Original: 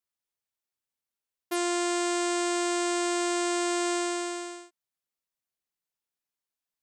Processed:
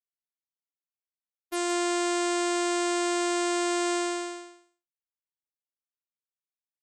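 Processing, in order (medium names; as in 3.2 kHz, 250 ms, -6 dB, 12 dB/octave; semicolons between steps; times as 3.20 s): expander -27 dBFS; delay 169 ms -14.5 dB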